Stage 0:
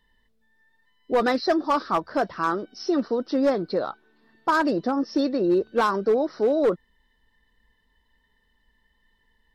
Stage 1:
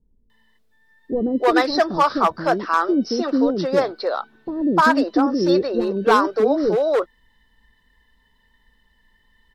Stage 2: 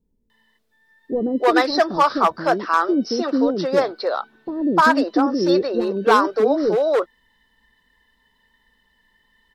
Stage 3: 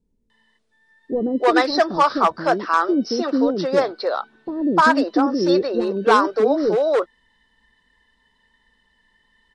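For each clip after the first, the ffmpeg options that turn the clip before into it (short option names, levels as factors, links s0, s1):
-filter_complex "[0:a]acrossover=split=440[s0][s1];[s1]adelay=300[s2];[s0][s2]amix=inputs=2:normalize=0,volume=2.11"
-af "lowshelf=f=110:g=-11,volume=1.12"
-af "aresample=22050,aresample=44100"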